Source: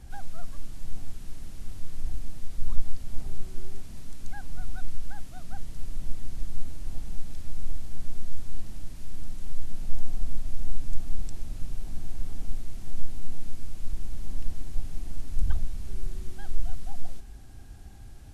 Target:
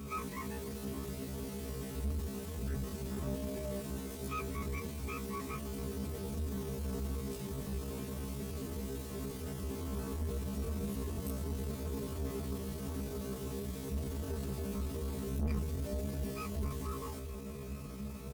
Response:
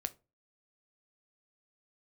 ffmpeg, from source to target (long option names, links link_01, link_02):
-filter_complex "[0:a]afftfilt=real='re':imag='-im':win_size=2048:overlap=0.75,acrossover=split=160|370[link_01][link_02][link_03];[link_02]acontrast=69[link_04];[link_01][link_04][link_03]amix=inputs=3:normalize=0,adynamicequalizer=threshold=0.001:dfrequency=160:dqfactor=3.3:tfrequency=160:tqfactor=3.3:attack=5:release=100:ratio=0.375:range=1.5:mode=cutabove:tftype=bell,highpass=frequency=45:width=0.5412,highpass=frequency=45:width=1.3066,aecho=1:1:274|548|822:0.106|0.0328|0.0102,asoftclip=type=tanh:threshold=-38.5dB,aecho=1:1:7.1:0.74,asetrate=68011,aresample=44100,atempo=0.64842,volume=8.5dB"